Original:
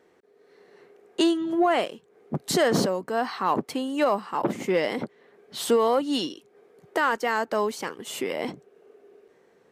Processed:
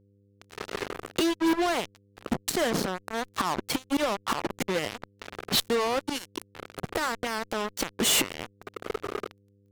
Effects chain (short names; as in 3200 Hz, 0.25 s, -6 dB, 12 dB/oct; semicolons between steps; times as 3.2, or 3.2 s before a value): flipped gate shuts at -23 dBFS, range -27 dB; fuzz box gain 53 dB, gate -50 dBFS; buzz 100 Hz, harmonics 5, -55 dBFS -5 dB/oct; gain -7.5 dB